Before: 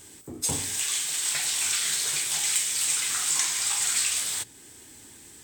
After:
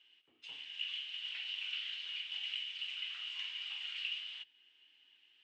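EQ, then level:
resonant band-pass 2,900 Hz, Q 16
high-frequency loss of the air 270 metres
+8.0 dB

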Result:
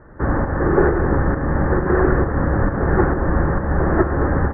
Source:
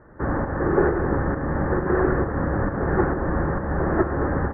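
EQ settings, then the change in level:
high-frequency loss of the air 430 metres
low-shelf EQ 65 Hz +6.5 dB
high-shelf EQ 2,200 Hz +10 dB
+4.0 dB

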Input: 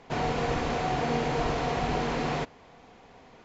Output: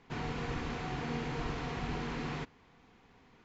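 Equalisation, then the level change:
parametric band 620 Hz −11.5 dB 0.9 octaves
high-shelf EQ 4,300 Hz −6.5 dB
−5.5 dB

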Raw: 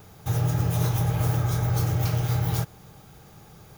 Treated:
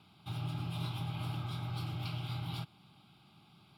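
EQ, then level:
band-pass filter 290–4,200 Hz
parametric band 890 Hz −13.5 dB 2.5 octaves
phaser with its sweep stopped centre 1,800 Hz, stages 6
+2.5 dB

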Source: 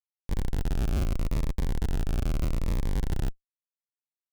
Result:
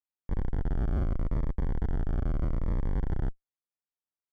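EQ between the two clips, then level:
Savitzky-Golay smoothing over 41 samples
−1.5 dB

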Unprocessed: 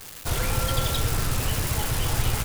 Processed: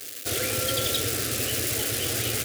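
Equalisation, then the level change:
high-pass filter 110 Hz 24 dB per octave
phaser with its sweep stopped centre 390 Hz, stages 4
+4.0 dB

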